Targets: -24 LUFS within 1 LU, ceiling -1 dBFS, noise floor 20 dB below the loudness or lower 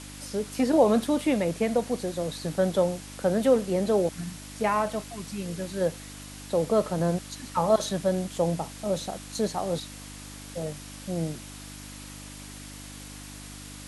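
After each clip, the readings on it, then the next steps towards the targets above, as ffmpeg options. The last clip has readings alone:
hum 50 Hz; harmonics up to 300 Hz; hum level -43 dBFS; noise floor -43 dBFS; noise floor target -48 dBFS; loudness -27.5 LUFS; peak -9.0 dBFS; loudness target -24.0 LUFS
-> -af "bandreject=f=50:t=h:w=4,bandreject=f=100:t=h:w=4,bandreject=f=150:t=h:w=4,bandreject=f=200:t=h:w=4,bandreject=f=250:t=h:w=4,bandreject=f=300:t=h:w=4"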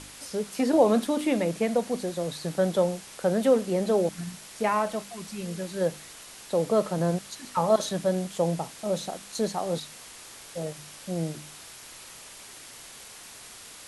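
hum none; noise floor -46 dBFS; noise floor target -48 dBFS
-> -af "afftdn=nr=6:nf=-46"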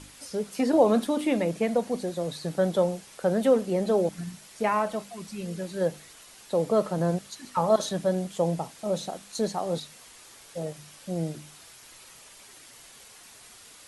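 noise floor -51 dBFS; loudness -27.5 LUFS; peak -9.0 dBFS; loudness target -24.0 LUFS
-> -af "volume=3.5dB"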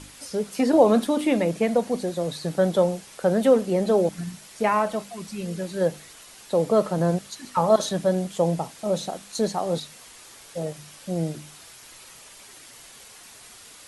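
loudness -24.0 LUFS; peak -5.5 dBFS; noise floor -47 dBFS

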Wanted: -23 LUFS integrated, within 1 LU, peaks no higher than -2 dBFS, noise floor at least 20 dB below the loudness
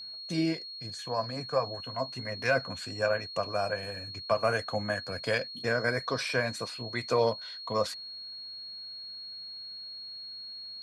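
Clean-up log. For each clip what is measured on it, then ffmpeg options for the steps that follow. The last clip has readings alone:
steady tone 4300 Hz; tone level -40 dBFS; loudness -32.5 LUFS; peak -14.0 dBFS; loudness target -23.0 LUFS
-> -af "bandreject=f=4.3k:w=30"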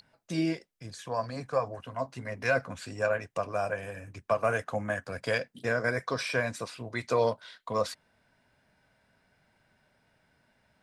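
steady tone none; loudness -32.0 LUFS; peak -14.0 dBFS; loudness target -23.0 LUFS
-> -af "volume=9dB"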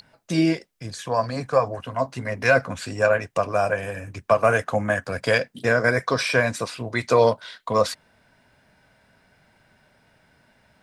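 loudness -23.0 LUFS; peak -5.0 dBFS; noise floor -62 dBFS

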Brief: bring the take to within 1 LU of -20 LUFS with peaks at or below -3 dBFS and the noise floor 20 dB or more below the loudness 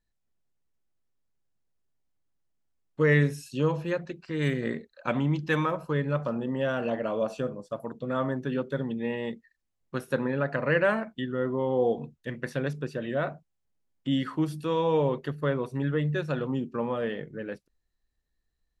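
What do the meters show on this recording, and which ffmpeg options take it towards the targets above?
loudness -29.0 LUFS; peak -10.5 dBFS; loudness target -20.0 LUFS
-> -af "volume=9dB,alimiter=limit=-3dB:level=0:latency=1"

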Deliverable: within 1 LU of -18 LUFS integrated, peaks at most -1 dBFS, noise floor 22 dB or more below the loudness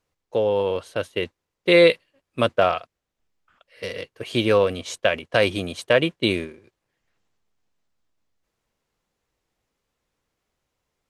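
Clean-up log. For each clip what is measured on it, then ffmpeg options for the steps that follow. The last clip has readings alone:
loudness -21.5 LUFS; peak -3.0 dBFS; loudness target -18.0 LUFS
-> -af "volume=3.5dB,alimiter=limit=-1dB:level=0:latency=1"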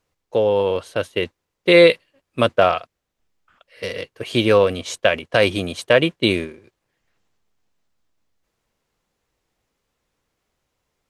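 loudness -18.5 LUFS; peak -1.0 dBFS; noise floor -79 dBFS

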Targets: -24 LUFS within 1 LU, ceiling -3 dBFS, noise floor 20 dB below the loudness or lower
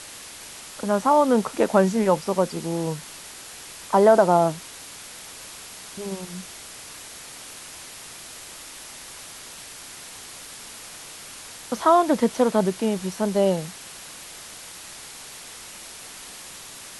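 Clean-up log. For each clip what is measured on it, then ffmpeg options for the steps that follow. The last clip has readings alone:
noise floor -41 dBFS; noise floor target -42 dBFS; loudness -21.5 LUFS; peak -4.0 dBFS; loudness target -24.0 LUFS
-> -af "afftdn=nr=6:nf=-41"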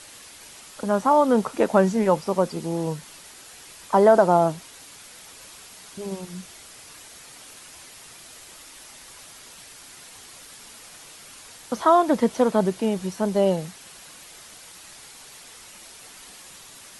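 noise floor -46 dBFS; loudness -21.5 LUFS; peak -4.0 dBFS; loudness target -24.0 LUFS
-> -af "volume=-2.5dB"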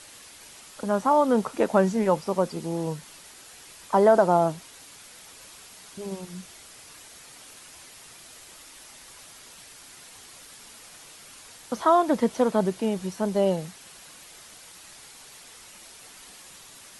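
loudness -24.0 LUFS; peak -6.5 dBFS; noise floor -48 dBFS

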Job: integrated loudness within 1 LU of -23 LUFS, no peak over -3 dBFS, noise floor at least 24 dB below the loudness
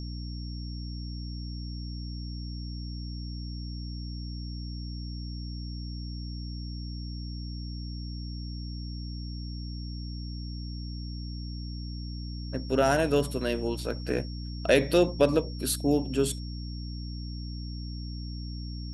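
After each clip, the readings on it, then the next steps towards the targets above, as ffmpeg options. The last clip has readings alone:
hum 60 Hz; harmonics up to 300 Hz; hum level -34 dBFS; steady tone 5500 Hz; tone level -46 dBFS; loudness -32.5 LUFS; peak -8.0 dBFS; loudness target -23.0 LUFS
-> -af "bandreject=f=60:t=h:w=6,bandreject=f=120:t=h:w=6,bandreject=f=180:t=h:w=6,bandreject=f=240:t=h:w=6,bandreject=f=300:t=h:w=6"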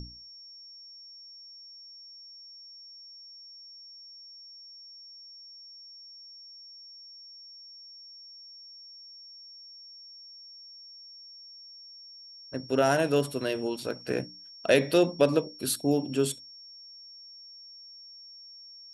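hum none; steady tone 5500 Hz; tone level -46 dBFS
-> -af "bandreject=f=5.5k:w=30"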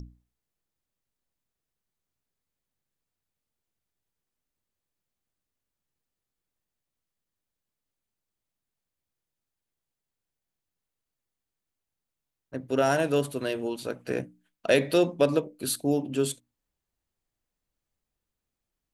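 steady tone none; loudness -27.0 LUFS; peak -8.0 dBFS; loudness target -23.0 LUFS
-> -af "volume=4dB"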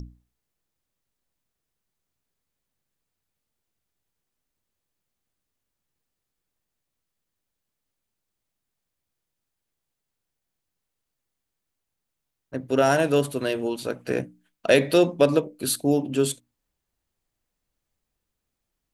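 loudness -23.0 LUFS; peak -4.0 dBFS; noise floor -83 dBFS

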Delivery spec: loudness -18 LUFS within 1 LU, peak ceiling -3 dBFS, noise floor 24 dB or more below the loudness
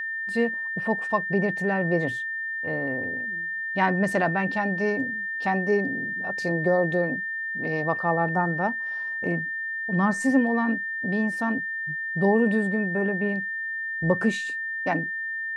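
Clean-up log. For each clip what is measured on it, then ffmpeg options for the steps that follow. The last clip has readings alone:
steady tone 1800 Hz; tone level -28 dBFS; loudness -25.5 LUFS; peak -8.5 dBFS; loudness target -18.0 LUFS
-> -af "bandreject=f=1.8k:w=30"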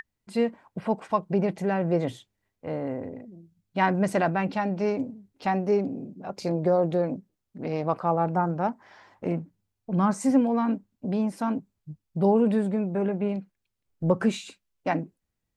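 steady tone none; loudness -27.0 LUFS; peak -9.0 dBFS; loudness target -18.0 LUFS
-> -af "volume=9dB,alimiter=limit=-3dB:level=0:latency=1"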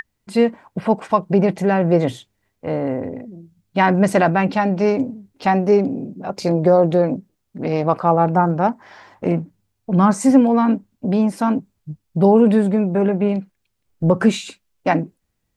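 loudness -18.5 LUFS; peak -3.0 dBFS; noise floor -72 dBFS

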